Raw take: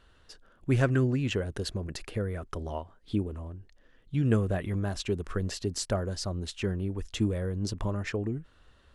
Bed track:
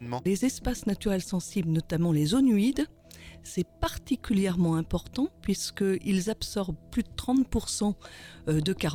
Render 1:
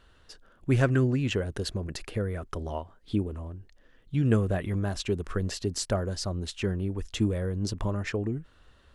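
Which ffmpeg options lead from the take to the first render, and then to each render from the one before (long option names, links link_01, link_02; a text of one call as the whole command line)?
ffmpeg -i in.wav -af "volume=1.5dB" out.wav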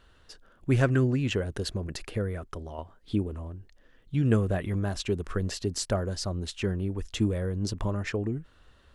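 ffmpeg -i in.wav -filter_complex "[0:a]asplit=2[link_01][link_02];[link_01]atrim=end=2.78,asetpts=PTS-STARTPTS,afade=type=out:start_time=2.26:duration=0.52:silence=0.421697[link_03];[link_02]atrim=start=2.78,asetpts=PTS-STARTPTS,afade=type=in:duration=0.004:curve=hsin:silence=0.421697[link_04];[link_03][link_04]concat=n=2:v=0:a=1" out.wav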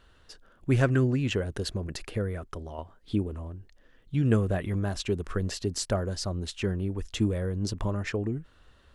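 ffmpeg -i in.wav -af anull out.wav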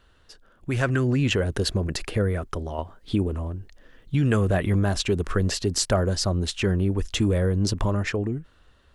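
ffmpeg -i in.wav -filter_complex "[0:a]acrossover=split=670|3100[link_01][link_02][link_03];[link_01]alimiter=limit=-22.5dB:level=0:latency=1[link_04];[link_04][link_02][link_03]amix=inputs=3:normalize=0,dynaudnorm=framelen=140:gausssize=13:maxgain=8dB" out.wav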